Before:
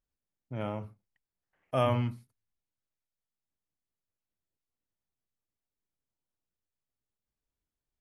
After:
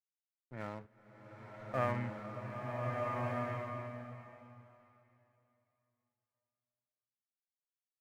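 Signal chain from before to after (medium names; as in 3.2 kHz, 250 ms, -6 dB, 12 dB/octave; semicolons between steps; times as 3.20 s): four-pole ladder low-pass 2 kHz, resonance 70%; crossover distortion -56 dBFS; swelling reverb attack 1540 ms, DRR -2 dB; trim +3.5 dB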